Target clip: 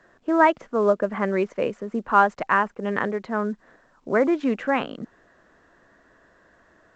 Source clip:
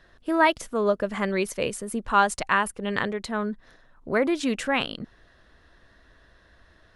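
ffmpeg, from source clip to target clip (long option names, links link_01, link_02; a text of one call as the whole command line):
ffmpeg -i in.wav -filter_complex "[0:a]acrossover=split=150 2100:gain=0.141 1 0.0708[link_01][link_02][link_03];[link_01][link_02][link_03]amix=inputs=3:normalize=0,volume=3.5dB" -ar 16000 -c:a pcm_alaw out.wav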